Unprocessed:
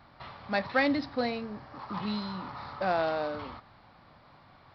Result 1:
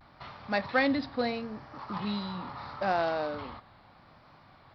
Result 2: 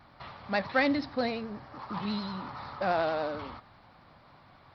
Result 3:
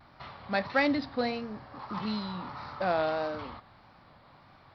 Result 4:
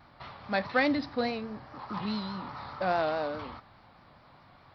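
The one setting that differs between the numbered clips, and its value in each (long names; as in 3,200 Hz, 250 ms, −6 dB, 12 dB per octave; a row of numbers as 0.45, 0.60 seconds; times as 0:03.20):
pitch vibrato, speed: 0.76, 11, 1.6, 4.8 Hertz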